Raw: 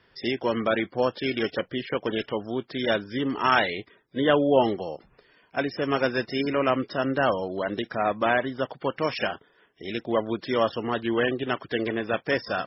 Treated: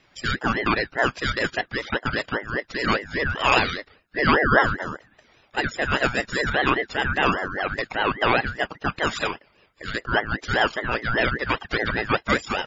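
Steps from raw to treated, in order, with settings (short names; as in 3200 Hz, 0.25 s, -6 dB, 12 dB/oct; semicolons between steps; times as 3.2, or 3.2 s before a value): band inversion scrambler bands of 1000 Hz; 11.5–12.34 comb 2.4 ms, depth 60%; ring modulator with a swept carrier 950 Hz, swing 30%, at 5 Hz; gain +5 dB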